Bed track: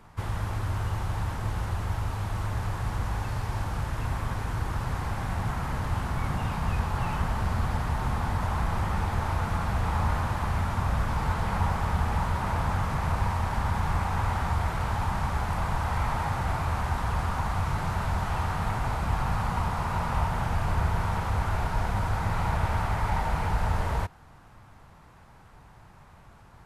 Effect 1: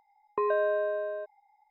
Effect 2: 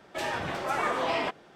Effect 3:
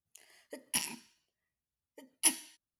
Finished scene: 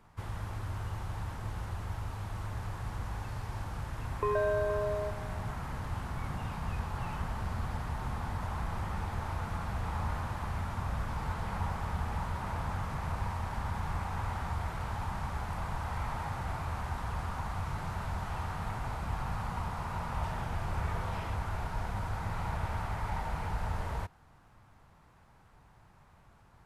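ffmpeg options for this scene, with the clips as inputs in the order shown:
-filter_complex "[0:a]volume=-8dB[a];[1:a]aecho=1:1:470:0.178,atrim=end=1.7,asetpts=PTS-STARTPTS,volume=-3dB,afade=t=in:d=0.004:c=hsin,afade=t=out:st=1.696:d=0.004:c=hsin,adelay=169785S[b];[2:a]atrim=end=1.55,asetpts=PTS-STARTPTS,volume=-17.5dB,afade=t=in:d=0.004:c=hsin,afade=t=out:st=1.546:d=0.004:c=hsin,adelay=20050[c];[a][b][c]amix=inputs=3:normalize=0"

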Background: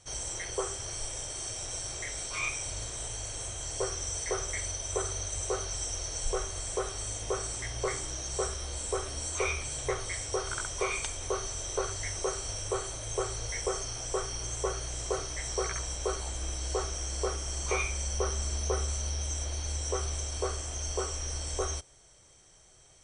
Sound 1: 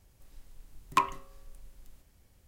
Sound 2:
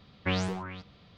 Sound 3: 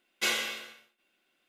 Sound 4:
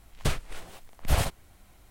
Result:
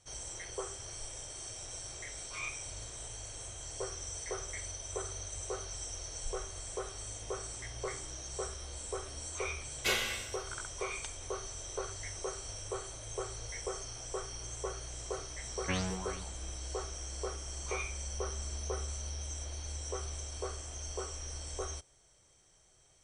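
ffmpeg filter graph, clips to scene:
-filter_complex "[0:a]volume=-7dB[a];[3:a]atrim=end=1.48,asetpts=PTS-STARTPTS,volume=-3dB,afade=t=in:d=0.004:c=hsin,afade=t=out:st=1.476:d=0.004:c=hsin,adelay=9630[b];[2:a]atrim=end=1.17,asetpts=PTS-STARTPTS,volume=-5.5dB,afade=t=in:d=0.004:c=hsin,afade=t=out:st=1.166:d=0.004:c=hsin,adelay=15420[c];[a][b][c]amix=inputs=3:normalize=0"

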